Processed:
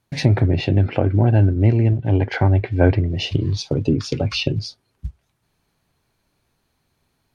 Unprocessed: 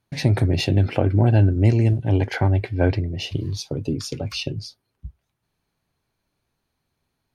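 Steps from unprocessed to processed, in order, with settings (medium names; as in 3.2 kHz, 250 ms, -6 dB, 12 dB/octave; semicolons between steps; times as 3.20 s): gain riding within 4 dB 2 s; companded quantiser 8-bit; low-pass that closes with the level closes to 2.5 kHz, closed at -17.5 dBFS; trim +3 dB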